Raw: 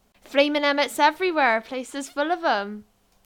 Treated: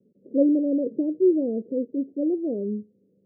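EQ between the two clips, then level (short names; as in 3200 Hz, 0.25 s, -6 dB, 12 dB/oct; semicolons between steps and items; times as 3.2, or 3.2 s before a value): HPF 150 Hz 24 dB/oct; steep low-pass 510 Hz 72 dB/oct; +6.5 dB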